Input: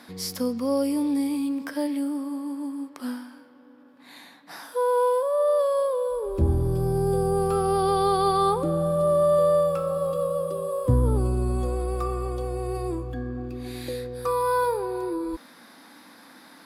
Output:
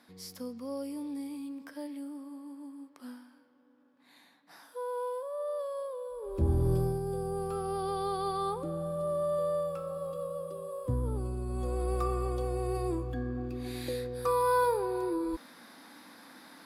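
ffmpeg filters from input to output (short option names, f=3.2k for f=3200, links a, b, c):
-af "volume=6dB,afade=t=in:st=6.15:d=0.58:silence=0.266073,afade=t=out:st=6.73:d=0.27:silence=0.354813,afade=t=in:st=11.47:d=0.45:silence=0.398107"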